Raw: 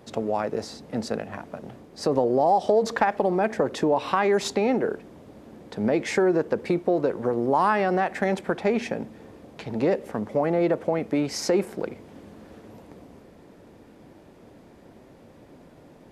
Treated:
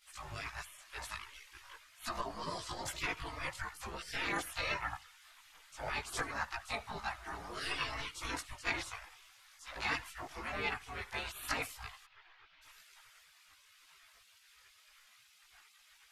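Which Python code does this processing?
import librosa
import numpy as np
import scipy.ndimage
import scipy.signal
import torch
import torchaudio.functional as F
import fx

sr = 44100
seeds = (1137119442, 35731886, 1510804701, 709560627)

y = fx.doubler(x, sr, ms=15.0, db=-5.0)
y = fx.spec_gate(y, sr, threshold_db=-25, keep='weak')
y = y + 10.0 ** (-22.5 / 20.0) * np.pad(y, (int(82 * sr / 1000.0), 0))[:len(y)]
y = fx.chorus_voices(y, sr, voices=6, hz=0.42, base_ms=19, depth_ms=1.7, mix_pct=60)
y = fx.gaussian_blur(y, sr, sigma=2.5, at=(12.05, 12.61), fade=0.02)
y = y * librosa.db_to_amplitude(6.0)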